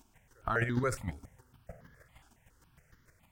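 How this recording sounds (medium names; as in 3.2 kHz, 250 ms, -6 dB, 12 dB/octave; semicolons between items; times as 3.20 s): chopped level 6.5 Hz, depth 60%, duty 15%; notches that jump at a steady rate 7.2 Hz 520–2500 Hz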